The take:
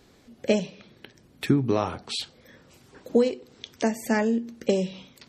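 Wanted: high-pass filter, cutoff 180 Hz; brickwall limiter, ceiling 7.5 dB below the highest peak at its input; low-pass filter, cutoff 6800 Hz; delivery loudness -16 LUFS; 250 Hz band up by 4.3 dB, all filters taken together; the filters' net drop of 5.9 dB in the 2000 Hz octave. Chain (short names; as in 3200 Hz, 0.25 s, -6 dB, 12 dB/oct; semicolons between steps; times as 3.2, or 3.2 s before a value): HPF 180 Hz; LPF 6800 Hz; bell 250 Hz +6.5 dB; bell 2000 Hz -7.5 dB; gain +10.5 dB; limiter -3 dBFS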